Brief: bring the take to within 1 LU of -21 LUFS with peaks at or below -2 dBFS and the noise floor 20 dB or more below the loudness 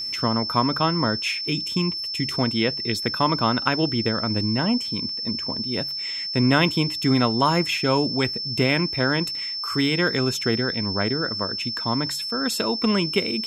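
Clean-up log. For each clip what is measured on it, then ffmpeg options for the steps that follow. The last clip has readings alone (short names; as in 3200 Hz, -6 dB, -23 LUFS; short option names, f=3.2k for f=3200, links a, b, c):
steady tone 5300 Hz; tone level -27 dBFS; loudness -22.5 LUFS; peak -4.5 dBFS; loudness target -21.0 LUFS
-> -af "bandreject=f=5.3k:w=30"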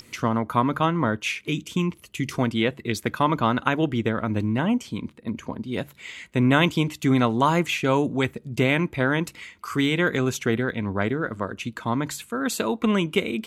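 steady tone none; loudness -24.5 LUFS; peak -4.0 dBFS; loudness target -21.0 LUFS
-> -af "volume=3.5dB,alimiter=limit=-2dB:level=0:latency=1"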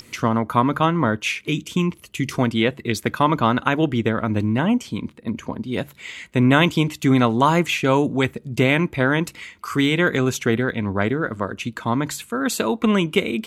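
loudness -21.0 LUFS; peak -2.0 dBFS; noise floor -49 dBFS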